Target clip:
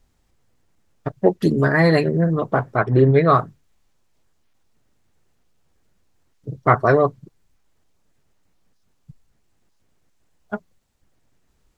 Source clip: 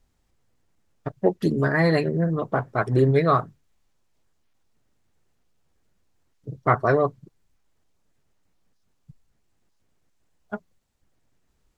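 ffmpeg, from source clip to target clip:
-filter_complex "[0:a]asettb=1/sr,asplit=3[a][b][c];[a]atrim=end=2.764[d];[b]atrim=start=2.76:end=3.3,asetpts=PTS-STARTPTS,afade=t=in:d=0.004:c=qsin,afade=t=out:st=0.536:d=0.004:c=qsin,lowpass=3.2k[e];[c]atrim=start=3.296[f];[d][e]acrossfade=d=0.004:c1=hsin:c2=qsin[g];[g][f]acrossfade=d=0.004:c1=qsin:c2=hsin,volume=4.5dB"

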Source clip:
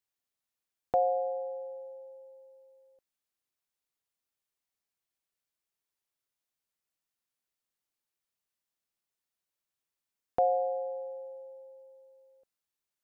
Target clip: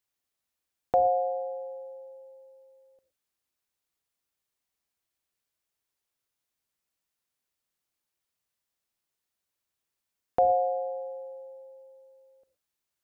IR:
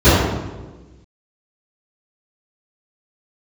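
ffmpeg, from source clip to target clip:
-filter_complex "[0:a]asplit=2[a][b];[1:a]atrim=start_sample=2205,afade=t=out:st=0.15:d=0.01,atrim=end_sample=7056,adelay=30[c];[b][c]afir=irnorm=-1:irlink=0,volume=-43.5dB[d];[a][d]amix=inputs=2:normalize=0,volume=3.5dB"

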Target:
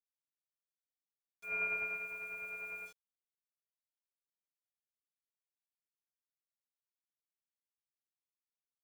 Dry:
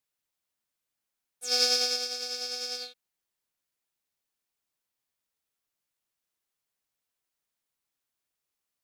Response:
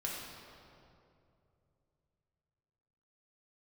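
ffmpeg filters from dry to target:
-filter_complex "[0:a]lowpass=f=2.5k:t=q:w=0.5098,lowpass=f=2.5k:t=q:w=0.6013,lowpass=f=2.5k:t=q:w=0.9,lowpass=f=2.5k:t=q:w=2.563,afreqshift=-2900,aecho=1:1:2.1:0.81,asplit=2[a][b];[b]acompressor=threshold=-43dB:ratio=6,volume=-2dB[c];[a][c]amix=inputs=2:normalize=0,aeval=exprs='val(0)*gte(abs(val(0)),0.00422)':c=same,volume=-7dB"

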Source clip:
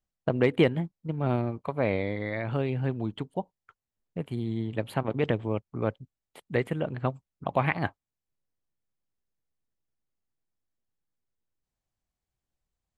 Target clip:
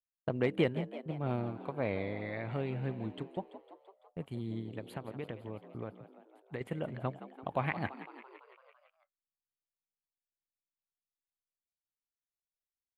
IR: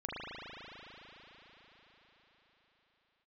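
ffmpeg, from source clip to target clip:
-filter_complex "[0:a]agate=range=-18dB:threshold=-41dB:ratio=16:detection=peak,asettb=1/sr,asplit=3[a][b][c];[a]atrim=end=4.594[d];[b]atrim=start=4.59:end=6.61,asetpts=PTS-STARTPTS,afade=t=in:d=0.004:c=qsin,afade=t=out:st=2.016:d=0.004:c=qsin,acompressor=threshold=-30dB:ratio=6[e];[c]atrim=start=6.606[f];[d][e]acrossfade=d=0.004:c1=hsin:c2=qsin[g];[g][f]acrossfade=d=0.004:c1=qsin:c2=hsin,asplit=8[h][i][j][k][l][m][n][o];[i]adelay=168,afreqshift=68,volume=-13.5dB[p];[j]adelay=336,afreqshift=136,volume=-17.5dB[q];[k]adelay=504,afreqshift=204,volume=-21.5dB[r];[l]adelay=672,afreqshift=272,volume=-25.5dB[s];[m]adelay=840,afreqshift=340,volume=-29.6dB[t];[n]adelay=1008,afreqshift=408,volume=-33.6dB[u];[o]adelay=1176,afreqshift=476,volume=-37.6dB[v];[h][p][q][r][s][t][u][v]amix=inputs=8:normalize=0,volume=-7.5dB"

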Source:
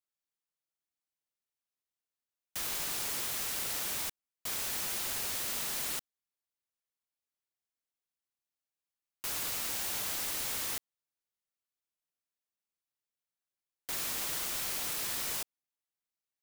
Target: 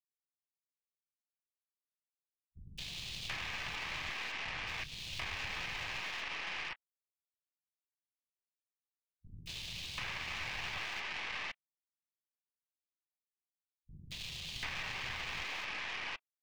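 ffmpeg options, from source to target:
-filter_complex "[0:a]volume=35.5dB,asoftclip=hard,volume=-35.5dB,firequalizer=gain_entry='entry(160,0);entry(290,-16);entry(770,3);entry(2500,10);entry(5400,-18);entry(13000,-28)':delay=0.05:min_phase=1,acrusher=bits=7:mix=0:aa=0.000001,equalizer=f=4.5k:w=1.1:g=5.5,alimiter=level_in=8.5dB:limit=-24dB:level=0:latency=1,volume=-8.5dB,acrossover=split=240|3600[a][b][c];[c]adelay=220[d];[b]adelay=740[e];[a][e][d]amix=inputs=3:normalize=0,acrossover=split=180[f][g];[g]acompressor=threshold=-49dB:ratio=6[h];[f][h]amix=inputs=2:normalize=0,asplit=2[i][j];[j]adelay=25,volume=-12.5dB[k];[i][k]amix=inputs=2:normalize=0,afwtdn=0.00112,aeval=exprs='0.0141*(cos(1*acos(clip(val(0)/0.0141,-1,1)))-cos(1*PI/2))+0.00251*(cos(4*acos(clip(val(0)/0.0141,-1,1)))-cos(4*PI/2))':c=same,bandreject=f=1.4k:w=8.8,volume=10.5dB"

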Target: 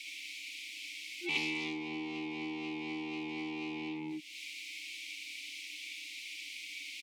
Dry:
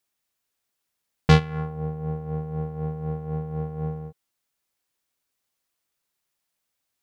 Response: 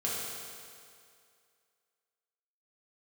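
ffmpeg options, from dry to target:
-filter_complex "[0:a]asettb=1/sr,asplit=3[a][b][c];[a]atrim=end=1.394[d];[b]atrim=start=1.39:end=3.81,asetpts=PTS-STARTPTS,afade=t=in:d=0.004:c=qsin,afade=t=out:st=2.416:d=0.004:c=qsin,acontrast=82[e];[c]atrim=start=3.806[f];[d][e]acrossfade=d=0.004:c1=hsin:c2=qsin[g];[g][f]acrossfade=d=0.004:c1=qsin:c2=hsin,afftfilt=real='re*(1-between(b*sr/4096,350,1500))':imag='im*(1-between(b*sr/4096,350,1500))':win_size=4096:overlap=0.75,aeval=exprs='(tanh(70.8*val(0)+0.4)-tanh(0.4))/70.8':c=same,lowshelf=f=150:g=-9,aecho=1:1:67|77:0.335|0.531,aeval=exprs='0.0168*(abs(mod(val(0)/0.0168+3,4)-2)-1)':c=same,asplit=2[h][i];[i]highpass=f=720:p=1,volume=33dB,asoftclip=type=tanh:threshold=-31.5dB[j];[h][j]amix=inputs=2:normalize=0,lowpass=f=1.5k:p=1,volume=-6dB,asplit=3[k][l][m];[k]bandpass=f=300:t=q:w=8,volume=0dB[n];[l]bandpass=f=870:t=q:w=8,volume=-6dB[o];[m]bandpass=f=2.24k:t=q:w=8,volume=-9dB[p];[n][o][p]amix=inputs=3:normalize=0,acompressor=threshold=-58dB:ratio=4,aexciter=amount=15.8:drive=7.5:freq=2.3k,volume=18dB"

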